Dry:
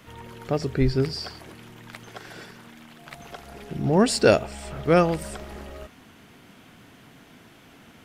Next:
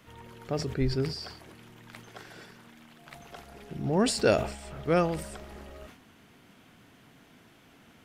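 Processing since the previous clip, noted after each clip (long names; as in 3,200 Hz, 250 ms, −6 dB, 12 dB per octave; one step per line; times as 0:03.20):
level that may fall only so fast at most 91 dB per second
level −6.5 dB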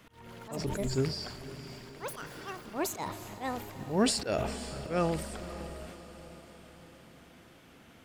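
volume swells 201 ms
feedback delay with all-pass diffusion 532 ms, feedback 54%, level −14 dB
delay with pitch and tempo change per echo 135 ms, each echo +7 semitones, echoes 2, each echo −6 dB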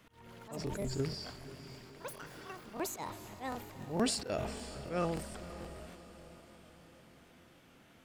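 regular buffer underruns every 0.15 s, samples 1,024, repeat, from 0:00.65
level −5 dB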